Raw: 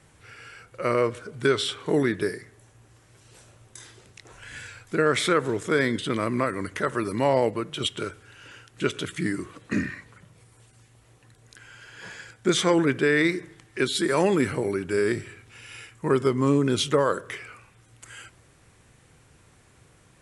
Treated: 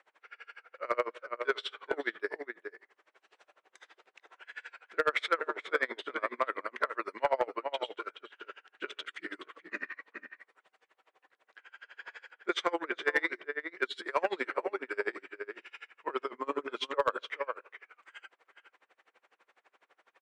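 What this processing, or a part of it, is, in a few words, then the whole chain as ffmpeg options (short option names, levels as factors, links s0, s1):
helicopter radio: -filter_complex "[0:a]highpass=600,asettb=1/sr,asplit=3[s0][s1][s2];[s0]atrim=end=13.024[s3];[s1]atrim=start=13.02:end=13.94,asetpts=PTS-STARTPTS,afade=t=in:d=0.004:c=qsin,afade=t=out:st=0.916:d=0.004:c=qsin,bandreject=f=2500:w=8.3[s4];[s2]atrim=start=13.936[s5];[s3][s4]acrossfade=d=0.004:c1=hsin:c2=qsin[s6];[s6][s5]acrossfade=d=0.004:c1=qsin:c2=hsin,highpass=340,lowpass=2500,asplit=2[s7][s8];[s8]adelay=425.7,volume=0.447,highshelf=f=4000:g=-9.58[s9];[s7][s9]amix=inputs=2:normalize=0,aeval=exprs='val(0)*pow(10,-29*(0.5-0.5*cos(2*PI*12*n/s))/20)':c=same,asoftclip=type=hard:threshold=0.106,volume=1.33"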